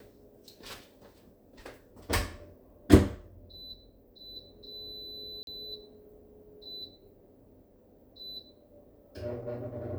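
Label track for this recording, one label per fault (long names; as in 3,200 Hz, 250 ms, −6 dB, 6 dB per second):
5.430000	5.470000	drop-out 42 ms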